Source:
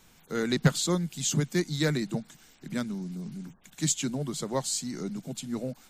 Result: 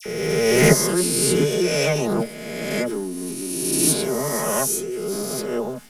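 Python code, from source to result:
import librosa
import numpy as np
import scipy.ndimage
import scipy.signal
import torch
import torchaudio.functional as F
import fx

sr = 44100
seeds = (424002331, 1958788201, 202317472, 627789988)

y = fx.spec_swells(x, sr, rise_s=1.93)
y = y + 0.79 * np.pad(y, (int(4.8 * sr / 1000.0), 0))[:len(y)]
y = fx.formant_shift(y, sr, semitones=6)
y = fx.dispersion(y, sr, late='lows', ms=59.0, hz=1700.0)
y = y * 10.0 ** (2.0 / 20.0)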